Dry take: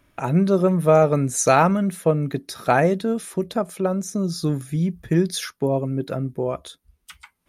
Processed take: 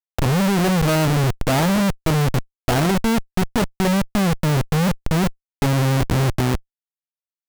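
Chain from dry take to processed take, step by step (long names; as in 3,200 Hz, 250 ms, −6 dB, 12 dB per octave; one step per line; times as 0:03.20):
RIAA equalisation playback
comparator with hysteresis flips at −21 dBFS
level −2 dB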